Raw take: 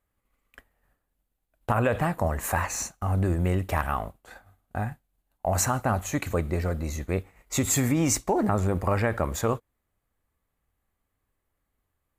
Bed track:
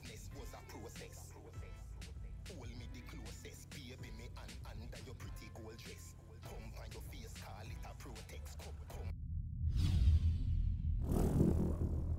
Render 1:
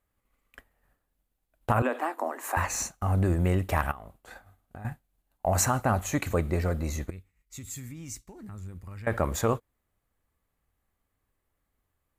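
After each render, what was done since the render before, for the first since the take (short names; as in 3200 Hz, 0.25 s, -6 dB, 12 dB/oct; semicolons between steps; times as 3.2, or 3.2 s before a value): 1.82–2.57 rippled Chebyshev high-pass 240 Hz, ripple 6 dB; 3.91–4.85 compressor 12:1, threshold -39 dBFS; 7.1–9.07 passive tone stack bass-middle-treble 6-0-2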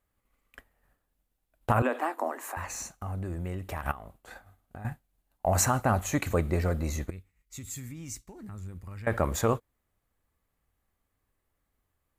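2.37–3.86 compressor 2:1, threshold -39 dBFS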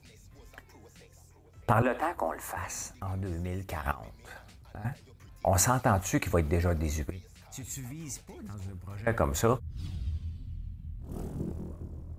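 add bed track -3.5 dB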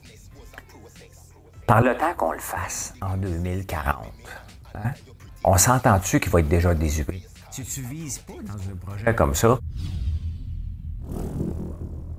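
gain +8 dB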